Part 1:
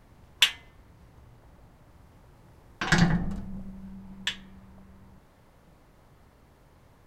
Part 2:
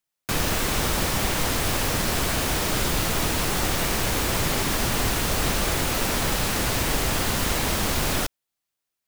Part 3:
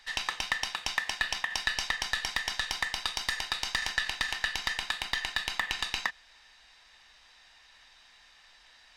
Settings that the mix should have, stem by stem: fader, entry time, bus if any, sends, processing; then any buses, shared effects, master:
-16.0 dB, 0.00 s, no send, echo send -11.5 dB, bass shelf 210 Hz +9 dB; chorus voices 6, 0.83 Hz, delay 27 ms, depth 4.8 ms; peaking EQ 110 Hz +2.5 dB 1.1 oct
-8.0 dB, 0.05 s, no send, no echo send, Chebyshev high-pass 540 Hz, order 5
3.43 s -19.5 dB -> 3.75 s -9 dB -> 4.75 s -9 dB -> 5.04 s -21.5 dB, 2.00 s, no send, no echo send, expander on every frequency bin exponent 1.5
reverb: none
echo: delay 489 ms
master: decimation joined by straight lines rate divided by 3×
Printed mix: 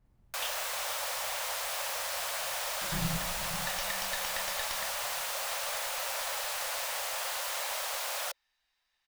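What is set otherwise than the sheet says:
stem 3: missing expander on every frequency bin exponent 1.5; master: missing decimation joined by straight lines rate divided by 3×

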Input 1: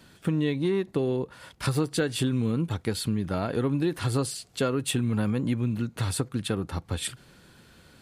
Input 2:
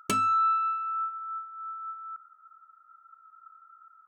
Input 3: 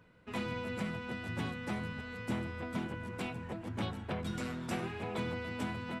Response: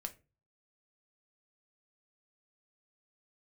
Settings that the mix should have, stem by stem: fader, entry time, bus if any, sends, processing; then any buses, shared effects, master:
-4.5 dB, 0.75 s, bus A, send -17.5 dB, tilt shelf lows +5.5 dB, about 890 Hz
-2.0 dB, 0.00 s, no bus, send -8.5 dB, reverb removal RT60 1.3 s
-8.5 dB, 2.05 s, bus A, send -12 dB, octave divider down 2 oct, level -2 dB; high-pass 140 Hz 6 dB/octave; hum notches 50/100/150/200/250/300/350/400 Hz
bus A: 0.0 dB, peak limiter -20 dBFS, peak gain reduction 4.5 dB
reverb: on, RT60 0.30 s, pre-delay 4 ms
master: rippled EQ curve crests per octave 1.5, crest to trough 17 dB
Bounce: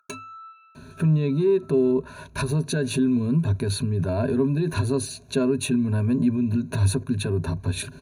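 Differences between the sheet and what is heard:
stem 1 -4.5 dB -> +3.0 dB; stem 2 -2.0 dB -> -11.5 dB; stem 3: muted

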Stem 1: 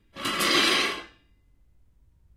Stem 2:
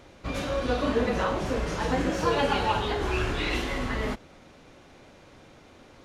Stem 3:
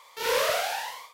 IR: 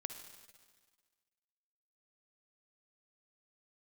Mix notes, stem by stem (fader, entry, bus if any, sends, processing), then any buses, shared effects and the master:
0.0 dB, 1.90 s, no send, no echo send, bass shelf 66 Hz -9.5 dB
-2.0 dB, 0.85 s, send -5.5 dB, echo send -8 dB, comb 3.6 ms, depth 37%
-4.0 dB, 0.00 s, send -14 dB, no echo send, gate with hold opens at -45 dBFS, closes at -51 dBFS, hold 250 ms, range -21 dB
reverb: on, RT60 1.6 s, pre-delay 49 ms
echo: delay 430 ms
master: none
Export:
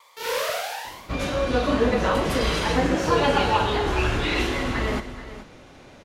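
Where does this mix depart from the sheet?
stem 1 0.0 dB -> -8.0 dB; stem 2: missing comb 3.6 ms, depth 37%; reverb return +9.0 dB

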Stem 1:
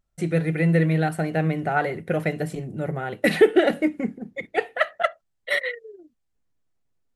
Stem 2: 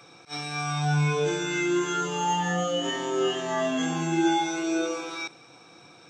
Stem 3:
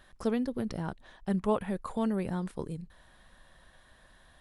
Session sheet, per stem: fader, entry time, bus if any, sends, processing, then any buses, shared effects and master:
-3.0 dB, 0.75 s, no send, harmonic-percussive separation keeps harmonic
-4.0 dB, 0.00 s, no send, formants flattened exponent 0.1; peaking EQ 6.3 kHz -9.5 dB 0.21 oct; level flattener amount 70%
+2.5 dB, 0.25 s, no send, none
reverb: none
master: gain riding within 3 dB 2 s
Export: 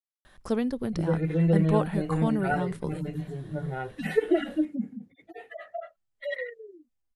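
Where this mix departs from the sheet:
stem 2: muted; master: missing gain riding within 3 dB 2 s

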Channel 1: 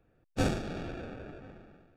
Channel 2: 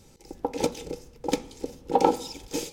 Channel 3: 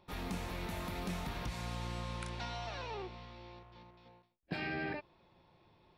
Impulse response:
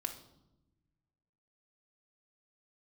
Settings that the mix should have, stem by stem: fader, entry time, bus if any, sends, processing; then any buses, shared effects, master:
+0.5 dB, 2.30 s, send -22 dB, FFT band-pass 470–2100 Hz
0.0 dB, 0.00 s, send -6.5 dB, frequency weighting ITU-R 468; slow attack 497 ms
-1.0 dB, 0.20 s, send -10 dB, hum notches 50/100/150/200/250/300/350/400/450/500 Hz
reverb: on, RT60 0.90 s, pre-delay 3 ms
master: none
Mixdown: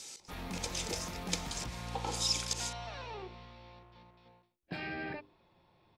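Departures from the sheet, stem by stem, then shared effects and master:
stem 1: muted; stem 3: send off

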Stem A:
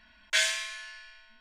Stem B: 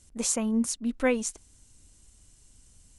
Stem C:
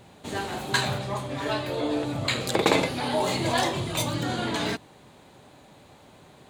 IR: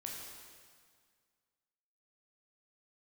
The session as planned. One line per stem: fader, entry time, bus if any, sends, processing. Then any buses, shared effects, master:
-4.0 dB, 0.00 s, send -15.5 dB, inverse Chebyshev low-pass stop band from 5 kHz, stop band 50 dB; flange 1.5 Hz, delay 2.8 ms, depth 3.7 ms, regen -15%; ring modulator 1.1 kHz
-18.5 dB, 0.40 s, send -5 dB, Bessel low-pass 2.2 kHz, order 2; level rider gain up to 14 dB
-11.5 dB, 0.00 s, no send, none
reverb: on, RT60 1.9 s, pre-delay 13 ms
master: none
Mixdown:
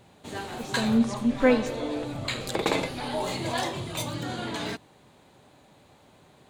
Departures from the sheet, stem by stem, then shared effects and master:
stem A: muted; stem B -18.5 dB -> -9.0 dB; stem C -11.5 dB -> -4.5 dB

